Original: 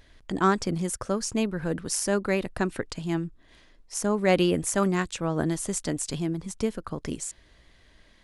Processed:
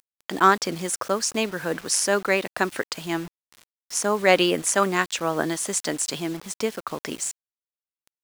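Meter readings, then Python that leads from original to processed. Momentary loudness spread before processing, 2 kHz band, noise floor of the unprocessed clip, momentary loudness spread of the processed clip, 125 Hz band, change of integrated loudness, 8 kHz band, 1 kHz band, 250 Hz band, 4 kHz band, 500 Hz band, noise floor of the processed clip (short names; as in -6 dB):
11 LU, +8.0 dB, -58 dBFS, 12 LU, -5.5 dB, +4.0 dB, +6.0 dB, +7.0 dB, -1.5 dB, +8.0 dB, +3.0 dB, under -85 dBFS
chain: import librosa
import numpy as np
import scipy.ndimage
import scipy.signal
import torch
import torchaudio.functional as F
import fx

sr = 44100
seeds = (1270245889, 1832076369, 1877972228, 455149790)

y = fx.weighting(x, sr, curve='A')
y = fx.quant_dither(y, sr, seeds[0], bits=8, dither='none')
y = F.gain(torch.from_numpy(y), 7.0).numpy()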